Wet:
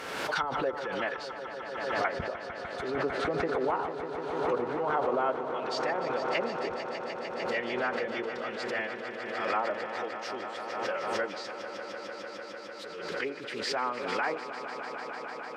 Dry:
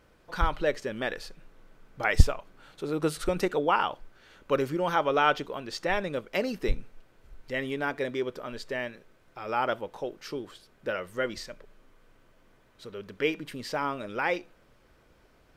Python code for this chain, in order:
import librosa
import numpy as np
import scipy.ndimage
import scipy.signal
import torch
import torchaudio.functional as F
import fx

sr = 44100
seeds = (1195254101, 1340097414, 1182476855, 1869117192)

y = fx.env_lowpass_down(x, sr, base_hz=790.0, full_db=-22.5)
y = fx.weighting(y, sr, curve='A')
y = fx.pitch_keep_formants(y, sr, semitones=-2.0)
y = fx.echo_swell(y, sr, ms=150, loudest=5, wet_db=-12)
y = fx.pre_swell(y, sr, db_per_s=34.0)